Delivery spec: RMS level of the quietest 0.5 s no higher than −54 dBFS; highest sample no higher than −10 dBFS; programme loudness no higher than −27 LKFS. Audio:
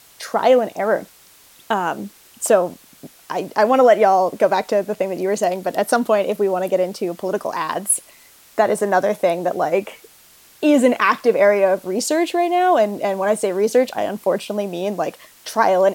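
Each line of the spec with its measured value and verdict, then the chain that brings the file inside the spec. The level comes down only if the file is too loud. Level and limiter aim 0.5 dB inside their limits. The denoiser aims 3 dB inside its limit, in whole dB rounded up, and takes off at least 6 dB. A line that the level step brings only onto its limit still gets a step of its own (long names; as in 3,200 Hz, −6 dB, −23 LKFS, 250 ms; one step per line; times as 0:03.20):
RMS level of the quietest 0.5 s −49 dBFS: out of spec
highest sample −3.5 dBFS: out of spec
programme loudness −18.5 LKFS: out of spec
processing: level −9 dB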